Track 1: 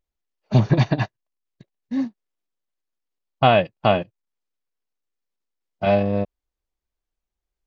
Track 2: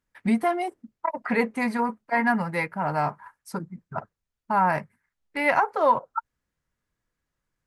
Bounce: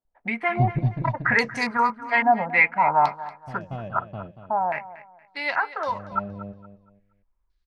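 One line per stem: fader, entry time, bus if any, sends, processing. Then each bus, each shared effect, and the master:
-13.0 dB, 0.05 s, no send, echo send -17 dB, tilt -4 dB/oct; auto duck -23 dB, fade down 1.50 s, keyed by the second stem
4.41 s -6 dB -> 4.62 s -13.5 dB, 0.00 s, no send, echo send -16.5 dB, tilt +2.5 dB/oct; stepped low-pass 3.6 Hz 710–5600 Hz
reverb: off
echo: feedback echo 0.234 s, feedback 29%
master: AGC gain up to 6 dB

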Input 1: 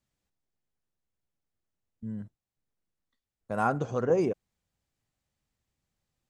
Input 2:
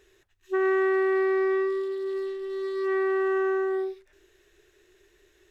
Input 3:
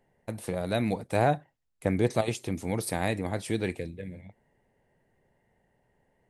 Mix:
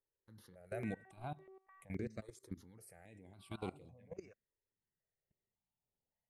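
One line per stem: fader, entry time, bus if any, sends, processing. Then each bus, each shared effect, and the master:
-17.0 dB, 0.00 s, bus A, no send, AGC gain up to 14 dB
1.44 s -7 dB -> 1.99 s -18 dB, 0.20 s, bus A, no send, stepped band-pass 4.7 Hz 370–1900 Hz
-9.0 dB, 0.00 s, no bus, no send, limiter -18.5 dBFS, peak gain reduction 7.5 dB
bus A: 0.0 dB, harmonic tremolo 1.5 Hz, depth 100%, crossover 710 Hz; limiter -32.5 dBFS, peak gain reduction 10.5 dB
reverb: off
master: level quantiser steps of 19 dB; step phaser 3.6 Hz 740–6000 Hz

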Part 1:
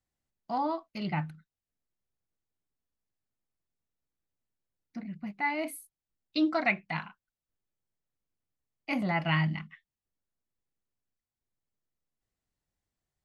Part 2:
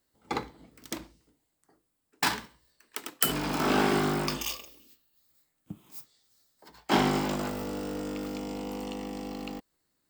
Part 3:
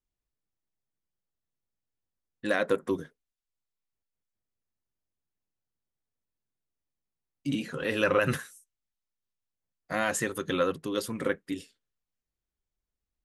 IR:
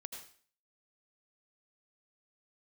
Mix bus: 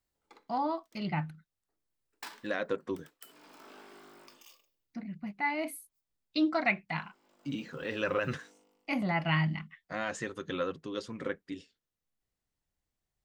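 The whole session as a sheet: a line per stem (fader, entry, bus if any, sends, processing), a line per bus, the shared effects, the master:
-1.0 dB, 0.00 s, no send, dry
2.25 s -12 dB -> 2.84 s -21 dB, 0.00 s, no send, HPF 360 Hz 12 dB/oct; notch 780 Hz, Q 12; compressor 2:1, threshold -32 dBFS, peak gain reduction 7.5 dB; auto duck -17 dB, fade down 0.40 s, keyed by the first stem
-6.5 dB, 0.00 s, no send, LPF 6500 Hz 24 dB/oct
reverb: off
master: dry

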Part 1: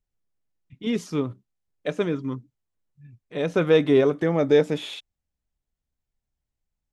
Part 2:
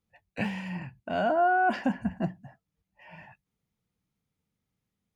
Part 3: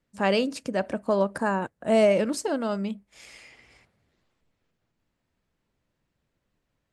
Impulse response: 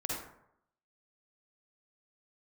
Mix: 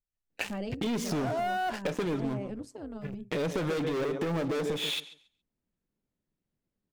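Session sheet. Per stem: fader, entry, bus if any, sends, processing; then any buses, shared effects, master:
-2.5 dB, 0.00 s, bus A, no send, echo send -10 dB, dry
1.69 s -13 dB -> 2.02 s -20.5 dB, 0.00 s, bus A, no send, no echo send, inverse Chebyshev high-pass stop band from 170 Hz, stop band 40 dB; three-band expander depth 100%
-12.5 dB, 0.30 s, no bus, no send, no echo send, bell 220 Hz +11.5 dB 1.8 oct; AM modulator 200 Hz, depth 50%; auto duck -6 dB, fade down 0.20 s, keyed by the first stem
bus A: 0.0 dB, sample leveller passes 5; compressor, threshold -26 dBFS, peak gain reduction 13 dB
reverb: off
echo: feedback echo 0.139 s, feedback 17%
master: compressor, threshold -28 dBFS, peak gain reduction 7.5 dB

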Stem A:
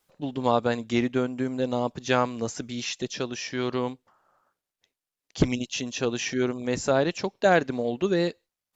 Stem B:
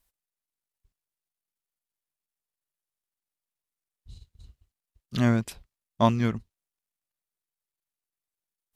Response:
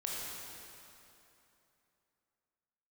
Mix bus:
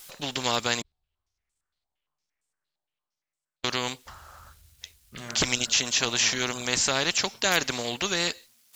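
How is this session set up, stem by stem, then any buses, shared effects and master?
+2.0 dB, 0.00 s, muted 0.82–3.64, no send, tilt shelf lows -9.5 dB, about 1500 Hz
-8.0 dB, 0.00 s, send -11.5 dB, compressor 3:1, threshold -29 dBFS, peak gain reduction 10.5 dB; resonator 75 Hz, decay 0.34 s, harmonics all, mix 70%; stepped low-pass 8.7 Hz 790–7900 Hz; auto duck -11 dB, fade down 1.10 s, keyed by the first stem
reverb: on, RT60 2.9 s, pre-delay 18 ms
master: spectral compressor 2:1

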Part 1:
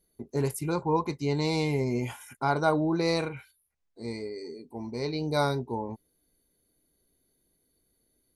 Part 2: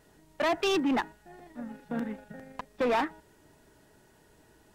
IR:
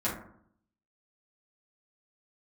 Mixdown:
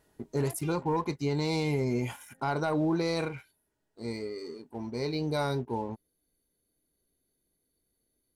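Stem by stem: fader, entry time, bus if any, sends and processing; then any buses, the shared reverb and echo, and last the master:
-4.0 dB, 0.00 s, no send, sample leveller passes 1
-6.5 dB, 0.00 s, no send, compressor, threshold -34 dBFS, peak gain reduction 9 dB; auto duck -15 dB, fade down 1.35 s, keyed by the first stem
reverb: off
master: limiter -20.5 dBFS, peak gain reduction 6 dB

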